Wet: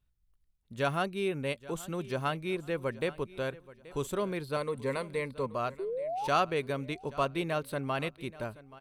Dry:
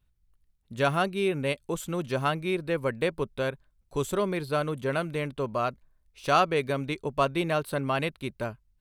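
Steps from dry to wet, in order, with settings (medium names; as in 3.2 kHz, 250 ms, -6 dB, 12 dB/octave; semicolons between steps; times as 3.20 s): 4.56–5.47 s: rippled EQ curve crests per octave 0.95, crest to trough 11 dB; 5.79–6.28 s: painted sound rise 370–920 Hz -29 dBFS; feedback delay 829 ms, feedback 32%, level -19 dB; trim -5 dB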